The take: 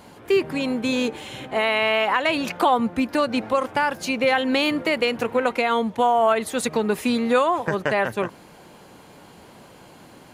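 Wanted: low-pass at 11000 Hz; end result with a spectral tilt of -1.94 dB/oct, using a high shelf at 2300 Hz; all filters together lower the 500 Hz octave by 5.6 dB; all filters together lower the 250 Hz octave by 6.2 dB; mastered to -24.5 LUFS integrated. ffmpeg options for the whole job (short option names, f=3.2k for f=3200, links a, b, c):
-af "lowpass=11k,equalizer=f=250:t=o:g=-5.5,equalizer=f=500:t=o:g=-6.5,highshelf=f=2.3k:g=8,volume=-2.5dB"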